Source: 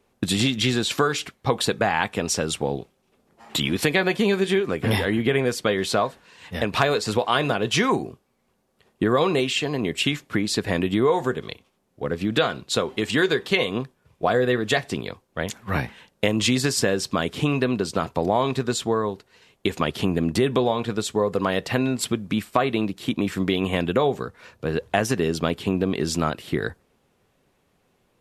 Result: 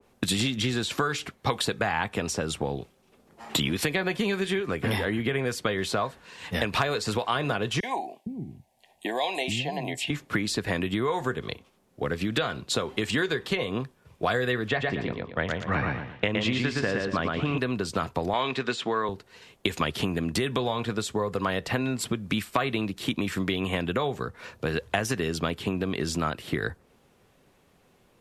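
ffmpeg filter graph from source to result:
-filter_complex "[0:a]asettb=1/sr,asplit=3[a][b][c];[a]atrim=end=7.804[d];[b]atrim=start=7.8:end=10.1,asetpts=PTS-STARTPTS,afade=t=in:d=0.004:c=qsin,afade=t=out:st=2.296:d=0.004:c=qsin,asuperstop=centerf=1300:order=4:qfactor=1.2,lowshelf=f=570:t=q:w=3:g=-7,acrossover=split=260|5200[e][f][g];[f]adelay=30[h];[e]adelay=460[i];[i][h][g]amix=inputs=3:normalize=0,atrim=end_sample=101430[j];[c]atrim=start=10.096[k];[d][j]acrossfade=d=0.004:c1=hsin:c2=qsin[l];[l][k]acrossfade=d=0.004:c1=qsin:c2=hsin,asettb=1/sr,asplit=3[m][n][o];[m]atrim=end=14.684[p];[n]atrim=start=14.68:end=17.58,asetpts=PTS-STARTPTS,afade=t=in:d=0.004:c=qsin,afade=t=out:st=2.896:d=0.004:c=qsin,lowpass=2.7k,aecho=1:1:116|232|348|464:0.708|0.191|0.0516|0.0139,atrim=end_sample=127890[q];[o]atrim=start=17.576[r];[p][q]acrossfade=d=0.004:c1=hsin:c2=qsin[s];[s][r]acrossfade=d=0.004:c1=qsin:c2=hsin,asettb=1/sr,asplit=3[t][u][v];[t]atrim=end=18.334[w];[u]atrim=start=18.33:end=19.09,asetpts=PTS-STARTPTS,afade=t=in:d=0.004:c=qsin,afade=t=out:st=0.756:d=0.004:c=qsin,deesser=0.6,highpass=220,lowpass=7.2k,equalizer=f=2.6k:w=0.79:g=10[x];[v]atrim=start=19.086[y];[w][x]acrossfade=d=0.004:c1=hsin:c2=qsin[z];[z][y]acrossfade=d=0.004:c1=qsin:c2=hsin,acrossover=split=110|1300[aa][ab][ac];[aa]acompressor=threshold=-42dB:ratio=4[ad];[ab]acompressor=threshold=-32dB:ratio=4[ae];[ac]acompressor=threshold=-29dB:ratio=4[af];[ad][ae][af]amix=inputs=3:normalize=0,adynamicequalizer=threshold=0.00562:dfrequency=1800:dqfactor=0.7:tfrequency=1800:tqfactor=0.7:attack=5:release=100:ratio=0.375:range=3.5:mode=cutabove:tftype=highshelf,volume=4dB"

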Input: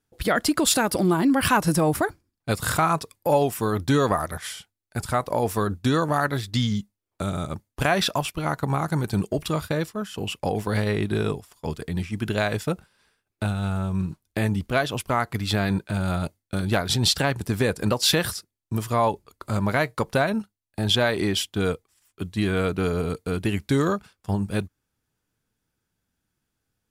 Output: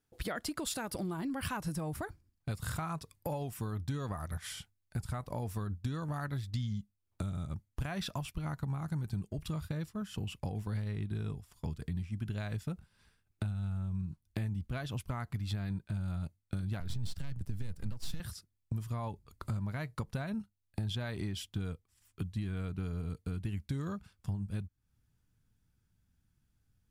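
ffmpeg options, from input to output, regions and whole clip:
-filter_complex "[0:a]asettb=1/sr,asplit=3[a][b][c];[a]atrim=end=16.804[d];[b]atrim=start=16.8:end=18.2,asetpts=PTS-STARTPTS,afade=t=in:d=0.004:c=qsin,afade=t=out:st=1.396:d=0.004:c=qsin,aeval=exprs='if(lt(val(0),0),0.251*val(0),val(0))':c=same,acrossover=split=230|3000[e][f][g];[f]acompressor=threshold=-32dB:ratio=2.5:attack=3.2:release=140:knee=2.83:detection=peak[h];[e][h][g]amix=inputs=3:normalize=0,lowshelf=f=230:g=5.5[i];[c]atrim=start=18.196[j];[d][i]acrossfade=d=0.004:c1=hsin:c2=qsin[k];[k][j]acrossfade=d=0.004:c1=qsin:c2=hsin,asubboost=boost=5:cutoff=180,acompressor=threshold=-32dB:ratio=4,volume=-4.5dB"

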